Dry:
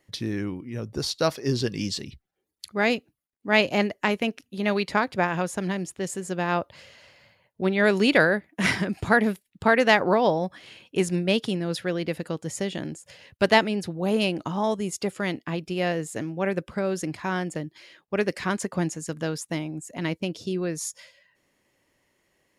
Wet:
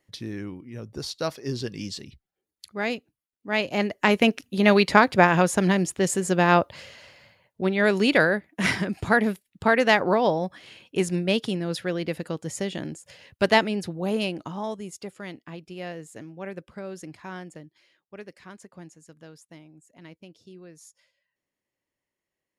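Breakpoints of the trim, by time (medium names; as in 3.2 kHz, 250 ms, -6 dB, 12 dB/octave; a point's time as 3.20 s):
3.63 s -5 dB
4.23 s +7 dB
6.52 s +7 dB
7.72 s -0.5 dB
13.89 s -0.5 dB
15.13 s -10 dB
17.36 s -10 dB
18.36 s -18 dB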